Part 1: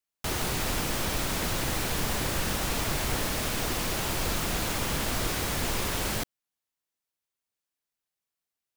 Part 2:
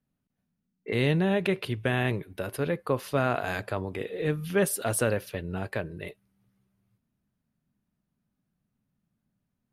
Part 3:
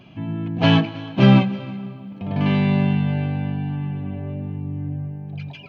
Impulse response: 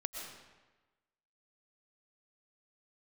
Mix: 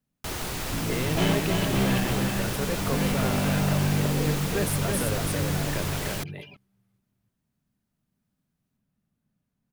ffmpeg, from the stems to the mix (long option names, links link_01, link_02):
-filter_complex "[0:a]volume=-2.5dB[link_01];[1:a]alimiter=limit=-20dB:level=0:latency=1,volume=-1dB,asplit=2[link_02][link_03];[link_03]volume=-3.5dB[link_04];[2:a]highshelf=frequency=8400:gain=9.5,asoftclip=type=tanh:threshold=-18.5dB,adelay=550,volume=-3.5dB,asplit=2[link_05][link_06];[link_06]volume=-4dB[link_07];[link_04][link_07]amix=inputs=2:normalize=0,aecho=0:1:329:1[link_08];[link_01][link_02][link_05][link_08]amix=inputs=4:normalize=0"